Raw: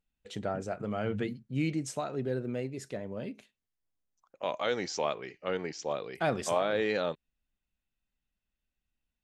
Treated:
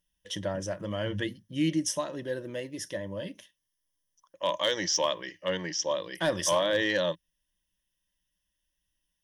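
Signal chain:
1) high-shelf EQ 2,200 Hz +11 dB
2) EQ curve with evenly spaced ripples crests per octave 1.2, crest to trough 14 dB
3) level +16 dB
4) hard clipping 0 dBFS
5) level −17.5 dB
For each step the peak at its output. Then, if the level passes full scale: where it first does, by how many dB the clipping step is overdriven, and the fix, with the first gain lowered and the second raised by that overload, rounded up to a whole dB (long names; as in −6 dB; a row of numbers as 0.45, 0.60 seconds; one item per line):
−13.5, −11.0, +5.0, 0.0, −17.5 dBFS
step 3, 5.0 dB
step 3 +11 dB, step 5 −12.5 dB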